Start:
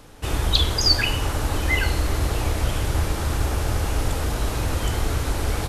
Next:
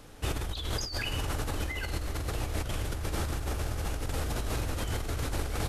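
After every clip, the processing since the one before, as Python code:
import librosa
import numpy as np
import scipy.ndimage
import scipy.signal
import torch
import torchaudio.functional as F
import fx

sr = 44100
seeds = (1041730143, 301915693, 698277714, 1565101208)

y = fx.peak_eq(x, sr, hz=950.0, db=-3.0, octaves=0.34)
y = fx.over_compress(y, sr, threshold_db=-25.0, ratio=-1.0)
y = y * 10.0 ** (-7.0 / 20.0)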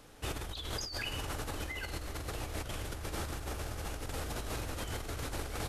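y = fx.low_shelf(x, sr, hz=220.0, db=-5.0)
y = y * 10.0 ** (-3.5 / 20.0)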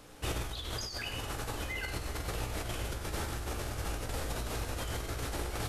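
y = fx.rider(x, sr, range_db=10, speed_s=0.5)
y = fx.comb_fb(y, sr, f0_hz=59.0, decay_s=0.37, harmonics='all', damping=0.0, mix_pct=70)
y = y + 10.0 ** (-9.5 / 20.0) * np.pad(y, (int(96 * sr / 1000.0), 0))[:len(y)]
y = y * 10.0 ** (7.0 / 20.0)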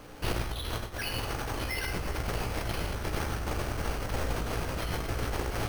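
y = np.minimum(x, 2.0 * 10.0 ** (-36.0 / 20.0) - x)
y = np.repeat(scipy.signal.resample_poly(y, 1, 6), 6)[:len(y)]
y = y * 10.0 ** (6.5 / 20.0)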